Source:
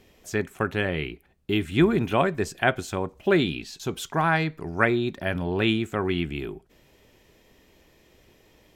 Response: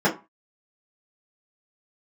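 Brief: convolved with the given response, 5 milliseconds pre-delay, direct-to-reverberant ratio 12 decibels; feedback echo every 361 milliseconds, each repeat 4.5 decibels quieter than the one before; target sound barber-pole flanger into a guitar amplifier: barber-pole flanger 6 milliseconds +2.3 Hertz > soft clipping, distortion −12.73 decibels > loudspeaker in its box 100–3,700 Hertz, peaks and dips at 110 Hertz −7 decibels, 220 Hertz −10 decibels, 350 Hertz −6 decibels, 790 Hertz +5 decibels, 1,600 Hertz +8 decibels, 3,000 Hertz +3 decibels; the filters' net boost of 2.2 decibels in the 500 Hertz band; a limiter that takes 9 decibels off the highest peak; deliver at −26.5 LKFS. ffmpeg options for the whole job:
-filter_complex "[0:a]equalizer=frequency=500:width_type=o:gain=5.5,alimiter=limit=-12.5dB:level=0:latency=1,aecho=1:1:361|722|1083|1444|1805|2166|2527|2888|3249:0.596|0.357|0.214|0.129|0.0772|0.0463|0.0278|0.0167|0.01,asplit=2[link_01][link_02];[1:a]atrim=start_sample=2205,adelay=5[link_03];[link_02][link_03]afir=irnorm=-1:irlink=0,volume=-29.5dB[link_04];[link_01][link_04]amix=inputs=2:normalize=0,asplit=2[link_05][link_06];[link_06]adelay=6,afreqshift=2.3[link_07];[link_05][link_07]amix=inputs=2:normalize=1,asoftclip=threshold=-21.5dB,highpass=100,equalizer=frequency=110:width_type=q:width=4:gain=-7,equalizer=frequency=220:width_type=q:width=4:gain=-10,equalizer=frequency=350:width_type=q:width=4:gain=-6,equalizer=frequency=790:width_type=q:width=4:gain=5,equalizer=frequency=1600:width_type=q:width=4:gain=8,equalizer=frequency=3000:width_type=q:width=4:gain=3,lowpass=frequency=3700:width=0.5412,lowpass=frequency=3700:width=1.3066,volume=4dB"

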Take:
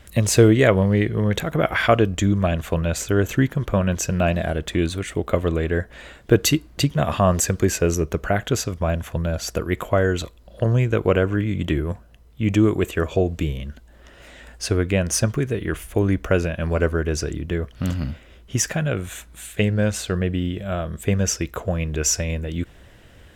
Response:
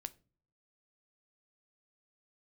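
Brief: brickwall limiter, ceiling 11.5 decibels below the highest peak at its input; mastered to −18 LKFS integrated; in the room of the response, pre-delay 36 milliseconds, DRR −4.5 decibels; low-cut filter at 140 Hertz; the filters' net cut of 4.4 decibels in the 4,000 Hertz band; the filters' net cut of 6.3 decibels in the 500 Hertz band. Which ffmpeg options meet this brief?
-filter_complex "[0:a]highpass=140,equalizer=frequency=500:width_type=o:gain=-8,equalizer=frequency=4000:width_type=o:gain=-6,alimiter=limit=-14.5dB:level=0:latency=1,asplit=2[link_01][link_02];[1:a]atrim=start_sample=2205,adelay=36[link_03];[link_02][link_03]afir=irnorm=-1:irlink=0,volume=8dB[link_04];[link_01][link_04]amix=inputs=2:normalize=0,volume=4dB"

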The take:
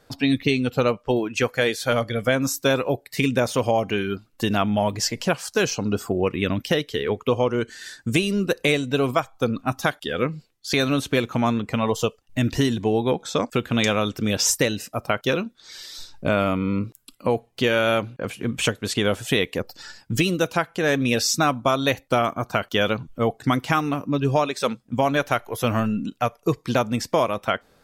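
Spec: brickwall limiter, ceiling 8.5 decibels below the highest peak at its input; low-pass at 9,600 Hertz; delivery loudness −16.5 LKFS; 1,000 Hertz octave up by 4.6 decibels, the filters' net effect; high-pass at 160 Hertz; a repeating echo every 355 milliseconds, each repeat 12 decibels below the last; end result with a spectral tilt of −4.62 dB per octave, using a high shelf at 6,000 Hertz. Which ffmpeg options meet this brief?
ffmpeg -i in.wav -af "highpass=160,lowpass=9600,equalizer=frequency=1000:width_type=o:gain=6.5,highshelf=frequency=6000:gain=-7.5,alimiter=limit=-10dB:level=0:latency=1,aecho=1:1:355|710|1065:0.251|0.0628|0.0157,volume=8dB" out.wav

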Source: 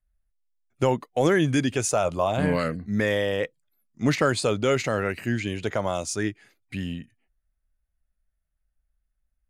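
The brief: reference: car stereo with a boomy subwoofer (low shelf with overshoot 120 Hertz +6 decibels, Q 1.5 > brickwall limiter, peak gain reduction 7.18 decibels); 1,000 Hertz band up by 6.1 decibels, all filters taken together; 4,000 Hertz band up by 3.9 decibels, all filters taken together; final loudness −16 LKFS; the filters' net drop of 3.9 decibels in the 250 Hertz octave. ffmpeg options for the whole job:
ffmpeg -i in.wav -af "lowshelf=frequency=120:width_type=q:width=1.5:gain=6,equalizer=frequency=250:width_type=o:gain=-4.5,equalizer=frequency=1000:width_type=o:gain=8.5,equalizer=frequency=4000:width_type=o:gain=4.5,volume=10dB,alimiter=limit=-4dB:level=0:latency=1" out.wav

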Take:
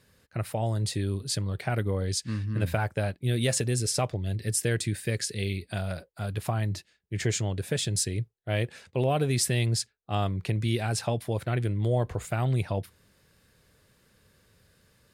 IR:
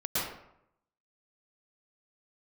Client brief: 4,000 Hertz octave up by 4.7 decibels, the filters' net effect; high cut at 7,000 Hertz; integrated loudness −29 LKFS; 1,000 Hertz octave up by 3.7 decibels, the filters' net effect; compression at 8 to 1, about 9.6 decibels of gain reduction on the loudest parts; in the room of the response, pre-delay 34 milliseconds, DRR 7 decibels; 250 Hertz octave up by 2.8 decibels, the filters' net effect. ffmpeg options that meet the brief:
-filter_complex "[0:a]lowpass=7000,equalizer=frequency=250:width_type=o:gain=3.5,equalizer=frequency=1000:width_type=o:gain=5,equalizer=frequency=4000:width_type=o:gain=6.5,acompressor=threshold=-29dB:ratio=8,asplit=2[link_01][link_02];[1:a]atrim=start_sample=2205,adelay=34[link_03];[link_02][link_03]afir=irnorm=-1:irlink=0,volume=-15.5dB[link_04];[link_01][link_04]amix=inputs=2:normalize=0,volume=4.5dB"

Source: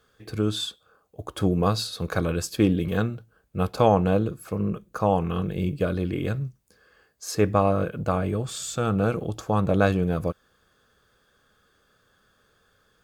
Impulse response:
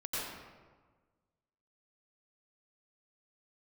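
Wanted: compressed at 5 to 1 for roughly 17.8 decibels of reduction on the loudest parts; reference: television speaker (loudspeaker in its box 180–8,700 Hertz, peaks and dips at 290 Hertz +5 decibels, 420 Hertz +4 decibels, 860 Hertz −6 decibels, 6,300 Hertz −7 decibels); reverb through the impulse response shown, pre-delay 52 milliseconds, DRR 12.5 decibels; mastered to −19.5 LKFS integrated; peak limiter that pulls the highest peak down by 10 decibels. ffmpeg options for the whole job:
-filter_complex "[0:a]acompressor=threshold=-35dB:ratio=5,alimiter=level_in=5.5dB:limit=-24dB:level=0:latency=1,volume=-5.5dB,asplit=2[link_01][link_02];[1:a]atrim=start_sample=2205,adelay=52[link_03];[link_02][link_03]afir=irnorm=-1:irlink=0,volume=-16.5dB[link_04];[link_01][link_04]amix=inputs=2:normalize=0,highpass=frequency=180:width=0.5412,highpass=frequency=180:width=1.3066,equalizer=frequency=290:width_type=q:width=4:gain=5,equalizer=frequency=420:width_type=q:width=4:gain=4,equalizer=frequency=860:width_type=q:width=4:gain=-6,equalizer=frequency=6300:width_type=q:width=4:gain=-7,lowpass=frequency=8700:width=0.5412,lowpass=frequency=8700:width=1.3066,volume=21.5dB"

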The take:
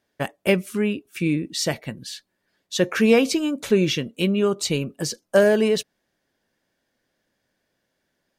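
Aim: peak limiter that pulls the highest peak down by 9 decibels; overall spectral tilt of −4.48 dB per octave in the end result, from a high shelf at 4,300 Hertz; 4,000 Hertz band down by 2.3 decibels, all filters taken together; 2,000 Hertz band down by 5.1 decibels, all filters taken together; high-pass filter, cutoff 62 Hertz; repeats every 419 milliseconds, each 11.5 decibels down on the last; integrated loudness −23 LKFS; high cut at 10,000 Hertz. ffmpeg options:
ffmpeg -i in.wav -af "highpass=62,lowpass=10000,equalizer=frequency=2000:width_type=o:gain=-7,equalizer=frequency=4000:width_type=o:gain=-6,highshelf=frequency=4300:gain=8.5,alimiter=limit=-15dB:level=0:latency=1,aecho=1:1:419|838|1257:0.266|0.0718|0.0194,volume=2.5dB" out.wav

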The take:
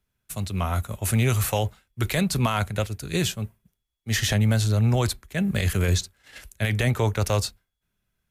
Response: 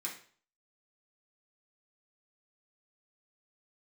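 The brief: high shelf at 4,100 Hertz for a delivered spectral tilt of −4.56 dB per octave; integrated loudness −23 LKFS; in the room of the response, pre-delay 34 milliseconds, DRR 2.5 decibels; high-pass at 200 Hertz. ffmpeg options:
-filter_complex "[0:a]highpass=200,highshelf=frequency=4100:gain=-7,asplit=2[link_01][link_02];[1:a]atrim=start_sample=2205,adelay=34[link_03];[link_02][link_03]afir=irnorm=-1:irlink=0,volume=-3dB[link_04];[link_01][link_04]amix=inputs=2:normalize=0,volume=4.5dB"

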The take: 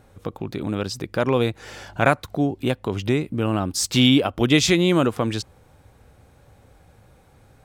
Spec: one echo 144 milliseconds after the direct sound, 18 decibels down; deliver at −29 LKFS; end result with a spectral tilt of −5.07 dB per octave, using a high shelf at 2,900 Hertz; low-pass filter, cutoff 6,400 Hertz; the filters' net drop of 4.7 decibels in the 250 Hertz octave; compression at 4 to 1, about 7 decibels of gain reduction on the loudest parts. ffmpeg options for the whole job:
ffmpeg -i in.wav -af "lowpass=6400,equalizer=frequency=250:width_type=o:gain=-6,highshelf=frequency=2900:gain=-3.5,acompressor=threshold=-22dB:ratio=4,aecho=1:1:144:0.126,volume=-0.5dB" out.wav

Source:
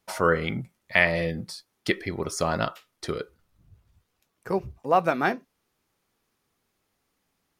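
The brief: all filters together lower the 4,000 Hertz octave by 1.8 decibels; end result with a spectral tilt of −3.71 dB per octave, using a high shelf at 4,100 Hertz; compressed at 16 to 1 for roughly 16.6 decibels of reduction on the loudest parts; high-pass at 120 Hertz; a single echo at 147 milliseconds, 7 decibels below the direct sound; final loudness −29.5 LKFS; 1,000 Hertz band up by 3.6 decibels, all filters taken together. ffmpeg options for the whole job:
ffmpeg -i in.wav -af "highpass=120,equalizer=frequency=1000:width_type=o:gain=5,equalizer=frequency=4000:width_type=o:gain=-7.5,highshelf=frequency=4100:gain=7.5,acompressor=threshold=-29dB:ratio=16,aecho=1:1:147:0.447,volume=6dB" out.wav

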